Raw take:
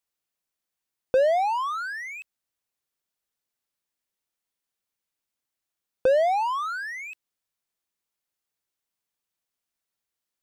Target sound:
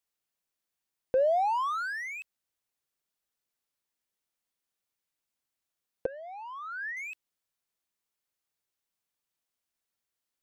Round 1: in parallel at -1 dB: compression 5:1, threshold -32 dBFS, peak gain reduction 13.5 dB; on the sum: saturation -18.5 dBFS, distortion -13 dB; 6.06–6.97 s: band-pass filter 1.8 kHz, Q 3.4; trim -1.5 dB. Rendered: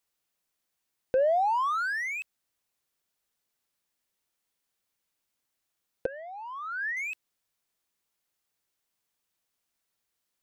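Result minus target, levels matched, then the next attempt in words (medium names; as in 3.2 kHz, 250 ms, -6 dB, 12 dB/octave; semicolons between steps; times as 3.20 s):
compression: peak gain reduction +13.5 dB
saturation -18.5 dBFS, distortion -15 dB; 6.06–6.97 s: band-pass filter 1.8 kHz, Q 3.4; trim -1.5 dB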